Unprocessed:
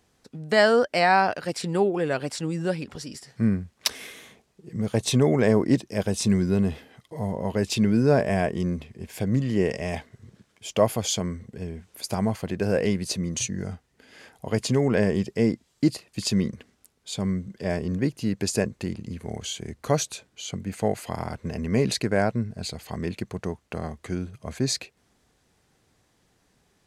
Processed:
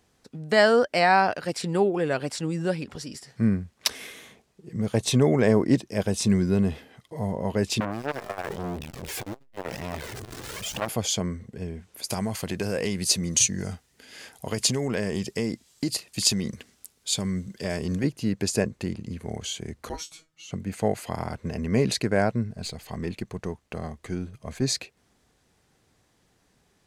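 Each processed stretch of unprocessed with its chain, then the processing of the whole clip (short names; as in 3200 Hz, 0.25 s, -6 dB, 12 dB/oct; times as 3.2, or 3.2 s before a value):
7.8–10.89 zero-crossing step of -26.5 dBFS + flange 1 Hz, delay 1 ms, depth 2 ms, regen 0% + core saturation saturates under 1600 Hz
12.1–18.04 compressor 4:1, threshold -23 dBFS + high shelf 2900 Hz +11.5 dB
19.89–20.51 frequency shift -200 Hz + resonator 160 Hz, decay 0.16 s, mix 100%
22.53–24.62 half-wave gain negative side -3 dB + notch 1400 Hz, Q 29
whole clip: dry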